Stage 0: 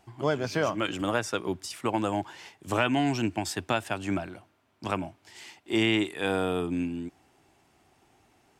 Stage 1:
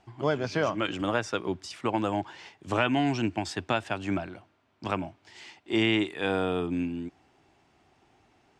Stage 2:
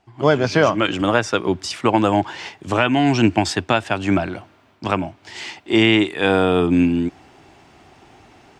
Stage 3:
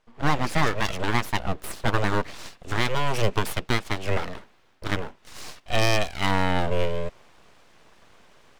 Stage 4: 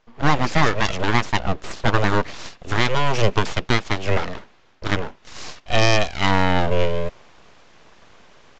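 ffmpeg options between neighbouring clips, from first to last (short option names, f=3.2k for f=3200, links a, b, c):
-af "lowpass=5.6k"
-af "dynaudnorm=f=130:g=3:m=16.5dB,volume=-1dB"
-af "aeval=exprs='abs(val(0))':c=same,volume=-4.5dB"
-af "aresample=16000,aresample=44100,volume=5dB"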